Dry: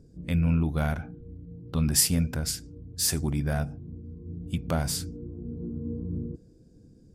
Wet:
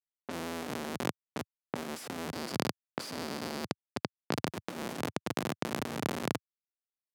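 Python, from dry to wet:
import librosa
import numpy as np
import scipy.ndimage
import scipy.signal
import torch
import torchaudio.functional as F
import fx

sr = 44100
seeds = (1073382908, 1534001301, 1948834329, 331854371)

y = fx.low_shelf(x, sr, hz=450.0, db=8.5)
y = fx.notch(y, sr, hz=1600.0, q=13.0)
y = y + 0.84 * np.pad(y, (int(3.4 * sr / 1000.0), 0))[:len(y)]
y = fx.echo_feedback(y, sr, ms=480, feedback_pct=57, wet_db=-14)
y = fx.rev_fdn(y, sr, rt60_s=1.5, lf_ratio=0.9, hf_ratio=0.9, size_ms=53.0, drr_db=15.0)
y = fx.schmitt(y, sr, flips_db=-21.5)
y = fx.env_lowpass(y, sr, base_hz=1300.0, full_db=-22.0)
y = scipy.signal.sosfilt(scipy.signal.bessel(8, 220.0, 'highpass', norm='mag', fs=sr, output='sos'), y)
y = fx.over_compress(y, sr, threshold_db=-37.0, ratio=-1.0)
y = fx.peak_eq(y, sr, hz=4700.0, db=9.0, octaves=0.29, at=(2.31, 4.45))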